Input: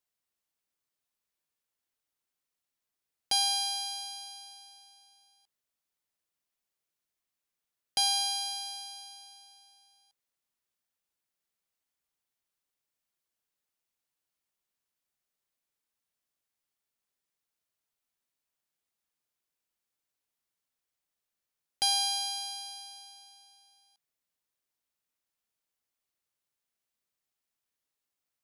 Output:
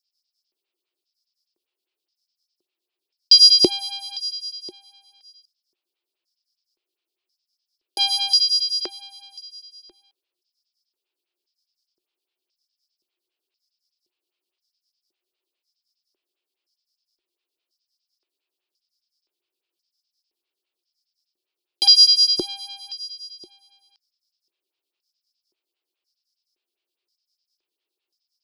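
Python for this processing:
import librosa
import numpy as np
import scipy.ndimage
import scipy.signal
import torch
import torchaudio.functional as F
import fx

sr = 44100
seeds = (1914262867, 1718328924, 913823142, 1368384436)

y = fx.band_shelf(x, sr, hz=3500.0, db=13.5, octaves=1.3)
y = fx.filter_lfo_highpass(y, sr, shape='square', hz=0.96, low_hz=360.0, high_hz=5200.0, q=7.9)
y = fx.stagger_phaser(y, sr, hz=4.9)
y = y * 10.0 ** (1.0 / 20.0)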